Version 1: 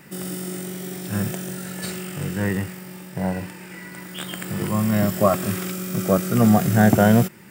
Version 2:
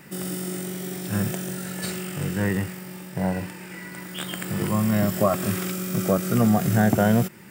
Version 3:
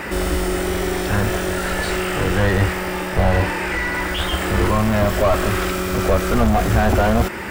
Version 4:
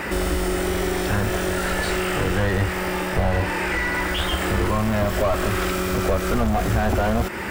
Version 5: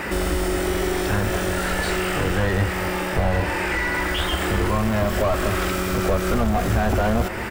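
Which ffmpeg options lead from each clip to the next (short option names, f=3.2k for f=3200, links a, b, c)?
-af "acompressor=threshold=-18dB:ratio=2"
-filter_complex "[0:a]asplit=2[a][b];[b]highpass=f=720:p=1,volume=35dB,asoftclip=type=tanh:threshold=-7.5dB[c];[a][c]amix=inputs=2:normalize=0,lowpass=f=1.1k:p=1,volume=-6dB,lowshelf=f=100:t=q:w=3:g=13.5"
-af "acompressor=threshold=-20dB:ratio=2"
-filter_complex "[0:a]asplit=2[a][b];[b]adelay=221.6,volume=-13dB,highshelf=f=4k:g=-4.99[c];[a][c]amix=inputs=2:normalize=0"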